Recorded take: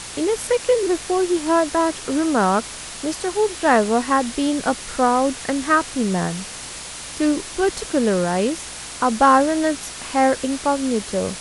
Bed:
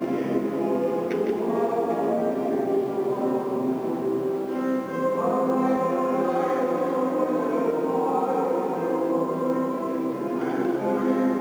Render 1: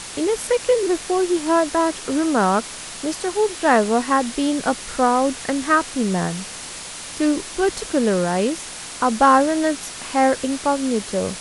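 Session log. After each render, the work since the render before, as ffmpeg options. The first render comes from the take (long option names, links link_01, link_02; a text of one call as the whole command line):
ffmpeg -i in.wav -af "bandreject=frequency=60:width_type=h:width=4,bandreject=frequency=120:width_type=h:width=4" out.wav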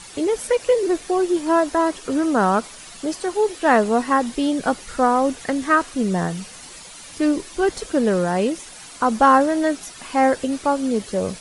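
ffmpeg -i in.wav -af "afftdn=noise_reduction=10:noise_floor=-34" out.wav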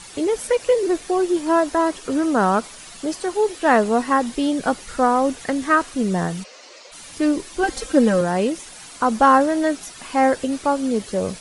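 ffmpeg -i in.wav -filter_complex "[0:a]asplit=3[link_01][link_02][link_03];[link_01]afade=type=out:start_time=6.43:duration=0.02[link_04];[link_02]highpass=frequency=340:width=0.5412,highpass=frequency=340:width=1.3066,equalizer=frequency=560:width_type=q:width=4:gain=9,equalizer=frequency=840:width_type=q:width=4:gain=-5,equalizer=frequency=1600:width_type=q:width=4:gain=-4,equalizer=frequency=3400:width_type=q:width=4:gain=-5,lowpass=frequency=5800:width=0.5412,lowpass=frequency=5800:width=1.3066,afade=type=in:start_time=6.43:duration=0.02,afade=type=out:start_time=6.91:duration=0.02[link_05];[link_03]afade=type=in:start_time=6.91:duration=0.02[link_06];[link_04][link_05][link_06]amix=inputs=3:normalize=0,asettb=1/sr,asplit=3[link_07][link_08][link_09];[link_07]atrim=end=7.634[link_10];[link_08]atrim=start=7.63:end=8.21,asetpts=PTS-STARTPTS,afade=type=in:duration=0.004:curve=qsin,afade=type=out:start_time=0.576:duration=0.004:curve=qsin,aecho=1:1:3.8:0.82,atrim=end_sample=25578[link_11];[link_09]atrim=start=8.206[link_12];[link_10][link_11]acrossfade=duration=0.004:curve1=hsin:curve2=qsin[link_13];[link_13][link_12]acrossfade=duration=0.004:curve1=qsin:curve2=hsin" out.wav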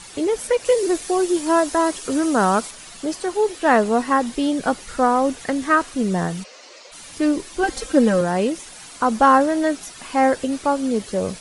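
ffmpeg -i in.wav -filter_complex "[0:a]asettb=1/sr,asplit=3[link_01][link_02][link_03];[link_01]atrim=end=0.654[link_04];[link_02]atrim=start=0.65:end=2.71,asetpts=PTS-STARTPTS,afade=type=in:duration=0.004:curve=qsin,afade=type=out:start_time=2.056:duration=0.004:curve=qsin,highshelf=frequency=4900:gain=9.5[link_05];[link_03]atrim=start=2.706[link_06];[link_04][link_05]acrossfade=duration=0.004:curve1=hsin:curve2=qsin[link_07];[link_07][link_06]acrossfade=duration=0.004:curve1=qsin:curve2=hsin" out.wav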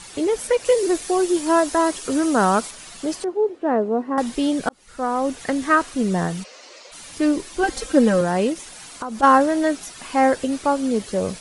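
ffmpeg -i in.wav -filter_complex "[0:a]asettb=1/sr,asplit=3[link_01][link_02][link_03];[link_01]atrim=end=3.244[link_04];[link_02]atrim=start=3.24:end=4.18,asetpts=PTS-STARTPTS,afade=type=in:duration=0.004:curve=qsin,afade=type=out:start_time=0.936:duration=0.004:curve=qsin,bandpass=frequency=360:width_type=q:width=1.1[link_05];[link_03]atrim=start=4.176[link_06];[link_04][link_05]acrossfade=duration=0.004:curve1=hsin:curve2=qsin[link_07];[link_07][link_06]acrossfade=duration=0.004:curve1=qsin:curve2=hsin,asplit=3[link_08][link_09][link_10];[link_08]afade=type=out:start_time=8.53:duration=0.02[link_11];[link_09]acompressor=threshold=-27dB:ratio=4:attack=3.2:release=140:knee=1:detection=peak,afade=type=in:start_time=8.53:duration=0.02,afade=type=out:start_time=9.22:duration=0.02[link_12];[link_10]afade=type=in:start_time=9.22:duration=0.02[link_13];[link_11][link_12][link_13]amix=inputs=3:normalize=0,asplit=2[link_14][link_15];[link_14]atrim=end=4.69,asetpts=PTS-STARTPTS,afade=type=out:start_time=4.686:duration=0.004:curve=hsin[link_16];[link_15]atrim=start=4.69,asetpts=PTS-STARTPTS,afade=type=in:duration=0.78[link_17];[link_16][link_17]concat=n=2:v=0:a=1" out.wav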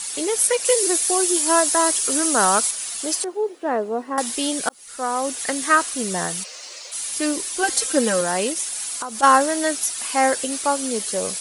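ffmpeg -i in.wav -af "aemphasis=mode=production:type=riaa" out.wav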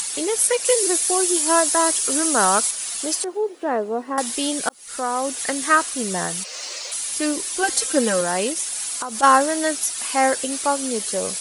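ffmpeg -i in.wav -af "acompressor=mode=upward:threshold=-23dB:ratio=2.5" out.wav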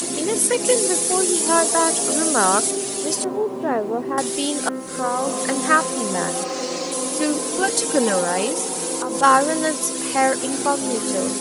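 ffmpeg -i in.wav -i bed.wav -filter_complex "[1:a]volume=-3.5dB[link_01];[0:a][link_01]amix=inputs=2:normalize=0" out.wav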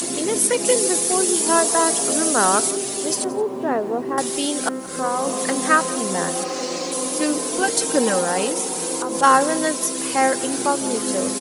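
ffmpeg -i in.wav -af "aecho=1:1:175:0.0944" out.wav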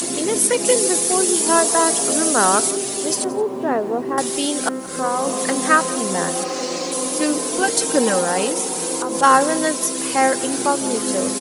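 ffmpeg -i in.wav -af "volume=1.5dB,alimiter=limit=-1dB:level=0:latency=1" out.wav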